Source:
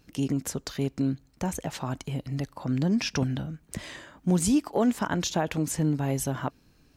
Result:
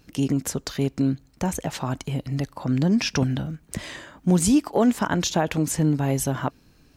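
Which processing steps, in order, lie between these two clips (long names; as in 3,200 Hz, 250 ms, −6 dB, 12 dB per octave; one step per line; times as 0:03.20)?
0:02.94–0:03.54: surface crackle 58 per second → 190 per second −52 dBFS
level +4.5 dB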